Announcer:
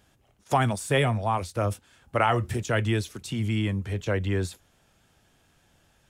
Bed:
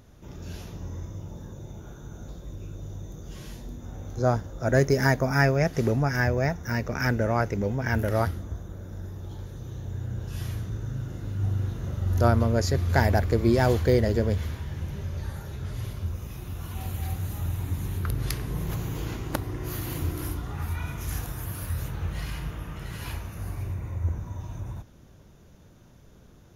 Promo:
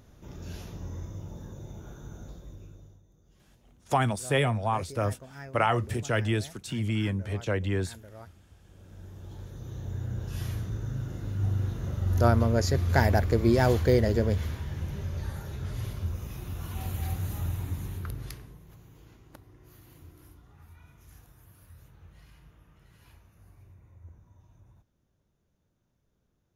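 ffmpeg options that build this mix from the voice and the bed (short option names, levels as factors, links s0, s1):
-filter_complex "[0:a]adelay=3400,volume=0.794[s0];[1:a]volume=9.44,afade=t=out:st=2.09:d=0.93:silence=0.0944061,afade=t=in:st=8.57:d=1.32:silence=0.0841395,afade=t=out:st=17.37:d=1.22:silence=0.0891251[s1];[s0][s1]amix=inputs=2:normalize=0"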